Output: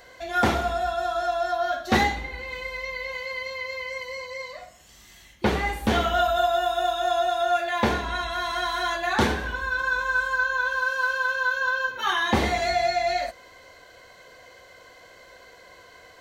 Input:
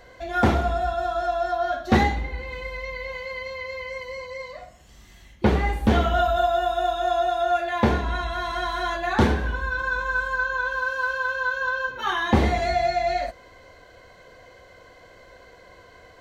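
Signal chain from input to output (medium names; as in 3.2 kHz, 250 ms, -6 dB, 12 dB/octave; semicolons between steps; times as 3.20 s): tilt EQ +2 dB/octave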